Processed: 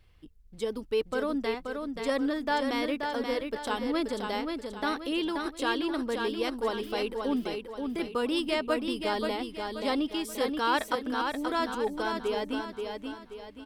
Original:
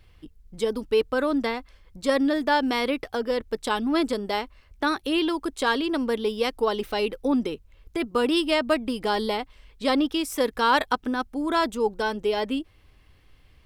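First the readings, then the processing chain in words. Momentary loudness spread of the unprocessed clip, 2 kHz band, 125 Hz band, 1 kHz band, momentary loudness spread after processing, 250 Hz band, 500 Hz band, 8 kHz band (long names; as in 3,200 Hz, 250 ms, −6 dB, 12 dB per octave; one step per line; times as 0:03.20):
7 LU, −5.0 dB, −5.0 dB, −5.0 dB, 7 LU, −5.0 dB, −5.0 dB, −5.0 dB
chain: repeating echo 530 ms, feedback 41%, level −5 dB
level −6.5 dB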